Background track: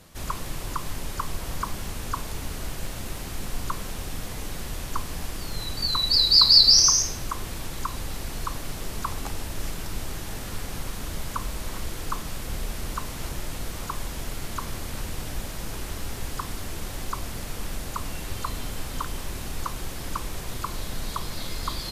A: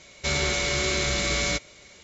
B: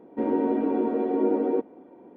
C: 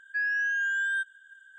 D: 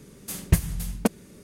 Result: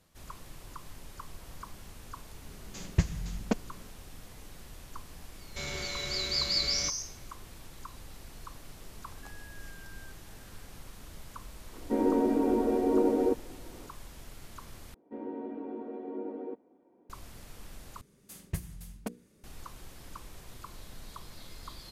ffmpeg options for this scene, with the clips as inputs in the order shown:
-filter_complex "[4:a]asplit=2[a][b];[2:a]asplit=2[c][d];[0:a]volume=-15dB[e];[a]aresample=16000,aresample=44100[f];[3:a]acompressor=threshold=-39dB:ratio=6:attack=3.2:release=140:knee=1:detection=peak[g];[b]bandreject=f=60:t=h:w=6,bandreject=f=120:t=h:w=6,bandreject=f=180:t=h:w=6,bandreject=f=240:t=h:w=6,bandreject=f=300:t=h:w=6,bandreject=f=360:t=h:w=6,bandreject=f=420:t=h:w=6,bandreject=f=480:t=h:w=6[h];[e]asplit=3[i][j][k];[i]atrim=end=14.944[l];[d]atrim=end=2.16,asetpts=PTS-STARTPTS,volume=-15dB[m];[j]atrim=start=17.096:end=18.014[n];[h]atrim=end=1.43,asetpts=PTS-STARTPTS,volume=-14.5dB[o];[k]atrim=start=19.436[p];[f]atrim=end=1.43,asetpts=PTS-STARTPTS,volume=-6dB,afade=t=in:d=0.004:c=hsin,afade=t=out:st=1.426:d=0.004:c=hsin,adelay=2460[q];[1:a]atrim=end=2.03,asetpts=PTS-STARTPTS,volume=-12.5dB,afade=t=in:d=0.004:c=hsin,afade=t=out:st=2.026:d=0.004:c=hsin,adelay=5320[r];[g]atrim=end=1.58,asetpts=PTS-STARTPTS,volume=-14.5dB,afade=t=in:d=0.004:c=hsin,afade=t=out:st=1.576:d=0.004:c=hsin,adelay=9090[s];[c]atrim=end=2.16,asetpts=PTS-STARTPTS,volume=-2dB,afade=t=in:d=0.004:c=hsin,afade=t=out:st=2.156:d=0.004:c=hsin,adelay=11730[t];[l][m]acrossfade=d=0.004:c1=hsin:c2=hsin[u];[u][n]acrossfade=d=0.004:c1=hsin:c2=hsin[v];[v][o]acrossfade=d=0.004:c1=hsin:c2=hsin[w];[w][p]acrossfade=d=0.004:c1=hsin:c2=hsin[x];[x][q][r][s][t]amix=inputs=5:normalize=0"

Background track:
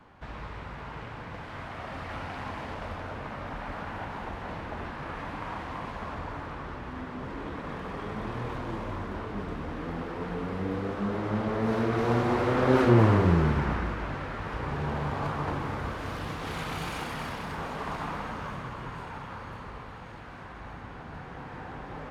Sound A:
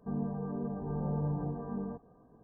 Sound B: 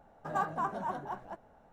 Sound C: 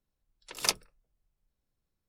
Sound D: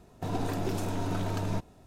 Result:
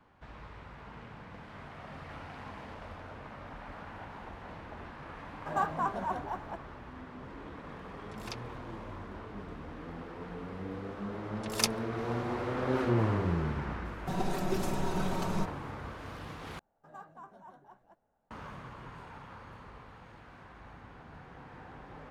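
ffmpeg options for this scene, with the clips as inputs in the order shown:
-filter_complex "[2:a]asplit=2[a][b];[3:a]asplit=2[c][d];[0:a]volume=-8.5dB[e];[1:a]acompressor=threshold=-37dB:ratio=6:attack=3.2:release=140:knee=1:detection=peak[f];[a]dynaudnorm=f=110:g=3:m=7dB[g];[c]acrossover=split=5000[h][i];[i]acompressor=threshold=-42dB:ratio=4:attack=1:release=60[j];[h][j]amix=inputs=2:normalize=0[k];[4:a]aecho=1:1:5.3:0.89[l];[e]asplit=2[m][n];[m]atrim=end=16.594[o];[b]atrim=end=1.72,asetpts=PTS-STARTPTS,volume=-17dB[p];[n]atrim=start=18.306[q];[f]atrim=end=2.43,asetpts=PTS-STARTPTS,volume=-15dB,afade=t=in:d=0.004:c=hsin,afade=t=out:st=2.426:d=0.004:c=hsin,adelay=800[r];[g]atrim=end=1.72,asetpts=PTS-STARTPTS,volume=-5.5dB,afade=t=in:d=0.004:c=hsin,afade=t=out:st=1.716:d=0.004:c=hsin,adelay=229761S[s];[k]atrim=end=2.08,asetpts=PTS-STARTPTS,volume=-12.5dB,afade=t=in:d=0.004:c=hsin,afade=t=out:st=2.076:d=0.004:c=hsin,adelay=7630[t];[d]atrim=end=2.08,asetpts=PTS-STARTPTS,volume=-1.5dB,afade=t=in:d=0.004:c=hsin,afade=t=out:st=2.076:d=0.004:c=hsin,adelay=10950[u];[l]atrim=end=1.86,asetpts=PTS-STARTPTS,volume=-3dB,afade=t=in:d=0.004:c=hsin,afade=t=out:st=1.856:d=0.004:c=hsin,adelay=13850[v];[o][p]acrossfade=d=0.004:c1=hsin:c2=hsin[w];[w][q]acrossfade=d=0.004:c1=hsin:c2=hsin[x];[x][r][s][t][u][v]amix=inputs=6:normalize=0"

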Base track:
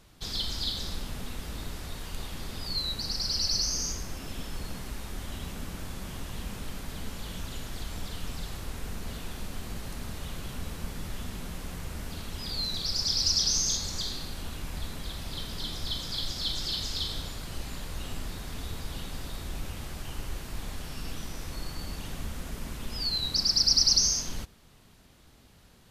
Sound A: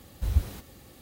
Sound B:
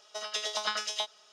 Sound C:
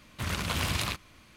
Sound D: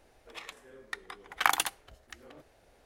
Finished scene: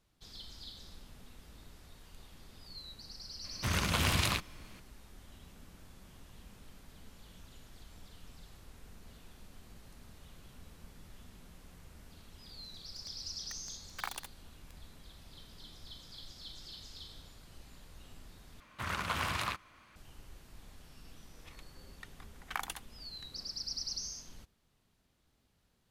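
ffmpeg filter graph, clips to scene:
-filter_complex "[3:a]asplit=2[a][b];[4:a]asplit=2[c][d];[0:a]volume=-17dB[e];[c]acrusher=bits=4:mix=0:aa=0.000001[f];[b]equalizer=f=1.2k:t=o:w=1.9:g=11[g];[e]asplit=2[h][i];[h]atrim=end=18.604[j];[g]atrim=end=1.36,asetpts=PTS-STARTPTS,volume=-9.5dB[k];[i]atrim=start=19.956[l];[a]atrim=end=1.36,asetpts=PTS-STARTPTS,afade=t=in:d=0.004:c=hsin,afade=t=out:st=1.356:d=0.004:c=hsin,adelay=3440[m];[f]atrim=end=2.85,asetpts=PTS-STARTPTS,volume=-15dB,afade=t=in:d=0.004:c=hsin,afade=t=out:st=2.846:d=0.004:c=hsin,adelay=12580[n];[d]atrim=end=2.85,asetpts=PTS-STARTPTS,volume=-13dB,afade=t=in:d=0.004:c=hsin,afade=t=out:st=2.846:d=0.004:c=hsin,adelay=21100[o];[j][k]acrossfade=d=0.004:c1=hsin:c2=hsin[p];[p][l]acrossfade=d=0.004:c1=hsin:c2=hsin[q];[q][m][n][o]amix=inputs=4:normalize=0"

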